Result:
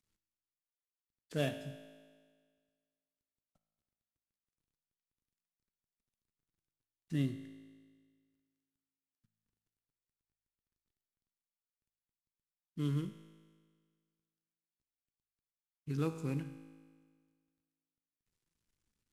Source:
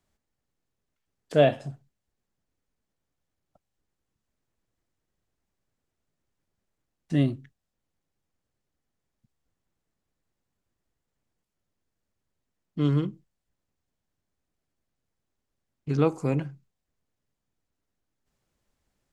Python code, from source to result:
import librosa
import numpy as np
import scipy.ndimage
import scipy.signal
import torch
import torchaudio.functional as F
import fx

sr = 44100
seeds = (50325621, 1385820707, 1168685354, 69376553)

y = fx.cvsd(x, sr, bps=64000)
y = fx.peak_eq(y, sr, hz=670.0, db=-11.0, octaves=1.1)
y = fx.comb_fb(y, sr, f0_hz=54.0, decay_s=1.7, harmonics='all', damping=0.0, mix_pct=70)